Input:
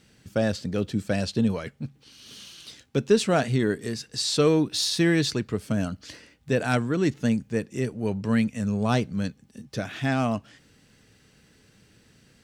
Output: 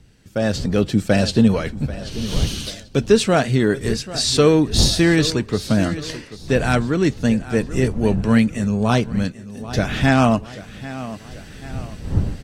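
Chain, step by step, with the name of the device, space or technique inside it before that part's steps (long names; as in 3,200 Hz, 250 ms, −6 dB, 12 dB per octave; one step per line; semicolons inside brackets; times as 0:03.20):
0:02.47–0:03.12: high-shelf EQ 4,700 Hz +4 dB
repeating echo 788 ms, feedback 35%, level −17 dB
smartphone video outdoors (wind on the microphone 120 Hz −38 dBFS; automatic gain control gain up to 16 dB; level −2 dB; AAC 48 kbit/s 44,100 Hz)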